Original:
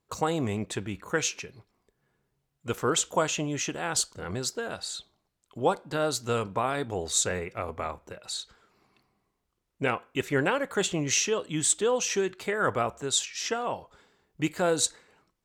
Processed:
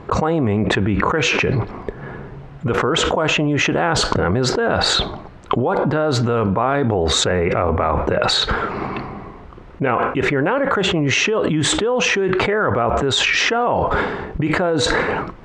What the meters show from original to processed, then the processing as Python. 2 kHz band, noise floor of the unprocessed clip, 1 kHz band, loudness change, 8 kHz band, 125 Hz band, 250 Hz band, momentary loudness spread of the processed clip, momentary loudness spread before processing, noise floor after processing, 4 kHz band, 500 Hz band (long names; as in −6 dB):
+13.5 dB, −79 dBFS, +12.0 dB, +10.5 dB, +1.0 dB, +15.0 dB, +13.0 dB, 10 LU, 11 LU, −38 dBFS, +12.5 dB, +11.0 dB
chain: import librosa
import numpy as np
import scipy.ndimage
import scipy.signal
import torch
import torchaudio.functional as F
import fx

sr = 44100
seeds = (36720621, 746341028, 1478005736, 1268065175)

y = scipy.signal.sosfilt(scipy.signal.butter(2, 1700.0, 'lowpass', fs=sr, output='sos'), x)
y = fx.env_flatten(y, sr, amount_pct=100)
y = y * librosa.db_to_amplitude(2.5)